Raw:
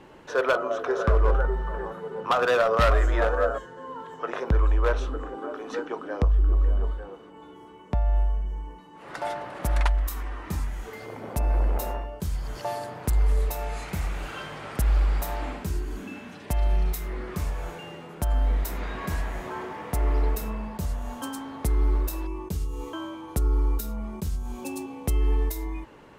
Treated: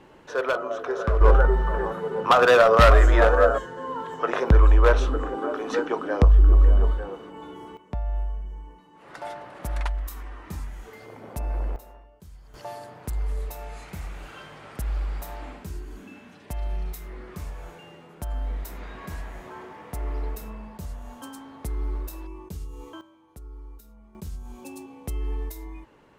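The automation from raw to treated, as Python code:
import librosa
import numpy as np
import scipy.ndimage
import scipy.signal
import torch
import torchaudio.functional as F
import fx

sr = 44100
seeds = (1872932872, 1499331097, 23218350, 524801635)

y = fx.gain(x, sr, db=fx.steps((0.0, -2.0), (1.21, 6.0), (7.77, -5.0), (11.76, -17.5), (12.54, -6.5), (23.01, -19.0), (24.15, -6.5)))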